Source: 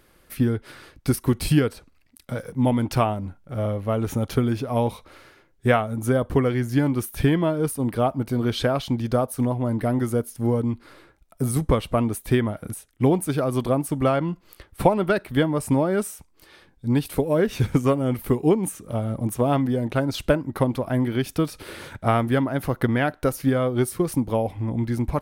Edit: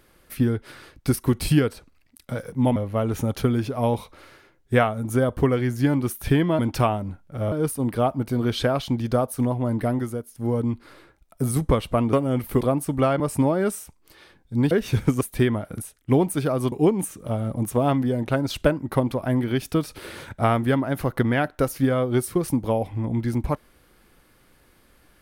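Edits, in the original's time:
0:02.76–0:03.69: move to 0:07.52
0:09.85–0:10.63: duck −9.5 dB, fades 0.38 s
0:12.13–0:13.64: swap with 0:17.88–0:18.36
0:14.23–0:15.52: remove
0:17.03–0:17.38: remove

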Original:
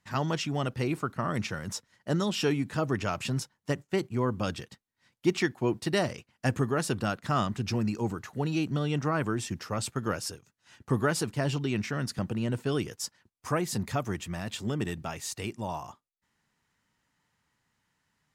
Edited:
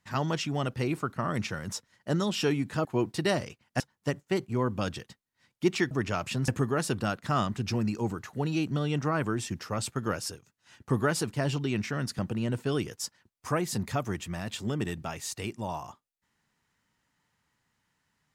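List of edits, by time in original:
0:02.85–0:03.42: swap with 0:05.53–0:06.48

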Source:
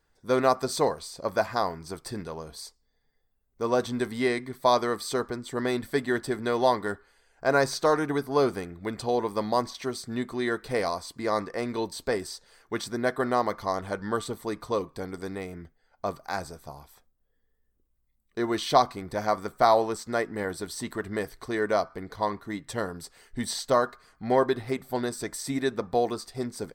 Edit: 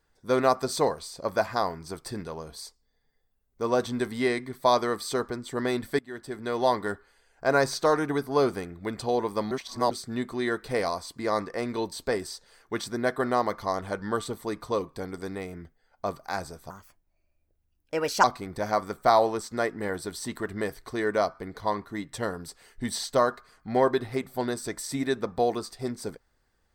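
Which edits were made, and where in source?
0:05.99–0:06.77: fade in, from −22.5 dB
0:09.51–0:09.91: reverse
0:16.70–0:18.79: play speed 136%

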